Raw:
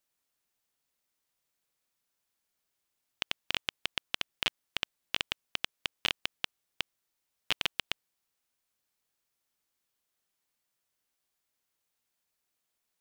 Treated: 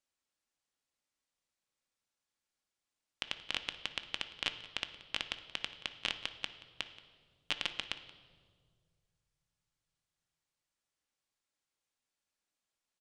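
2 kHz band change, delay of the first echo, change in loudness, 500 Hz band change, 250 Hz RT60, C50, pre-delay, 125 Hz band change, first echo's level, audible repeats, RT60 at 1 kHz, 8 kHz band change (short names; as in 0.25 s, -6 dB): -4.5 dB, 0.178 s, -4.5 dB, -4.0 dB, 2.6 s, 11.5 dB, 4 ms, -5.0 dB, -19.0 dB, 1, 1.5 s, -5.5 dB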